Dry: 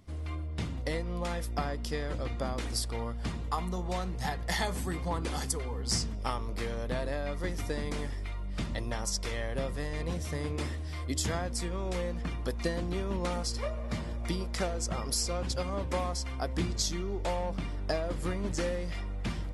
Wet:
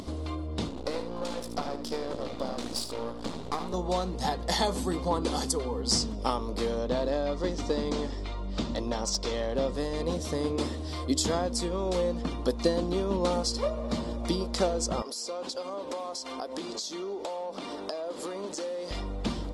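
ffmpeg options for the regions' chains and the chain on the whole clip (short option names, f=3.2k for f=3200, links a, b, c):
-filter_complex "[0:a]asettb=1/sr,asplit=3[a][b][c];[a]atrim=end=0.694[d];[b]atrim=start=0.69:end=3.74,asetpts=PTS-STARTPTS,afade=t=in:d=0.004:c=qsin,afade=t=out:st=3.046:d=0.004:c=qsin,highpass=91,aeval=exprs='max(val(0),0)':c=same,aecho=1:1:76:0.335,atrim=end_sample=134505[e];[c]atrim=start=3.736[f];[d][e]acrossfade=d=0.004:c1=hsin:c2=qsin[g];[g][f]acrossfade=d=0.004:c1=qsin:c2=hsin,asettb=1/sr,asplit=3[h][i][j];[h]atrim=end=6.794[k];[i]atrim=start=6.79:end=9.75,asetpts=PTS-STARTPTS,afade=t=in:d=0.004:c=qsin,afade=t=out:st=2.956:d=0.004:c=qsin,lowpass=f=7.6k:w=0.5412,lowpass=f=7.6k:w=1.3066,asoftclip=type=hard:threshold=-26.5dB[l];[j]atrim=start=9.746[m];[k][l]acrossfade=d=0.004:c1=hsin:c2=qsin[n];[n][m]acrossfade=d=0.004:c1=qsin:c2=hsin,asettb=1/sr,asplit=3[o][p][q];[o]atrim=end=15.024[r];[p]atrim=start=15.02:end=18.91,asetpts=PTS-STARTPTS,afade=t=in:d=0.004:c=qsin,afade=t=out:st=3.886:d=0.004:c=qsin,highpass=380,acompressor=threshold=-44dB:ratio=3:attack=3.2:release=140:knee=1:detection=peak[s];[q]atrim=start=18.906[t];[r][s]acrossfade=d=0.004:c1=hsin:c2=qsin[u];[u][t]acrossfade=d=0.004:c1=qsin:c2=hsin,equalizer=f=125:t=o:w=1:g=-5,equalizer=f=250:t=o:w=1:g=9,equalizer=f=500:t=o:w=1:g=7,equalizer=f=1k:t=o:w=1:g=6,equalizer=f=2k:t=o:w=1:g=-6,equalizer=f=4k:t=o:w=1:g=9,equalizer=f=8k:t=o:w=1:g=5,acompressor=mode=upward:threshold=-28dB:ratio=2.5,highshelf=f=9.7k:g=-5.5,volume=-1dB"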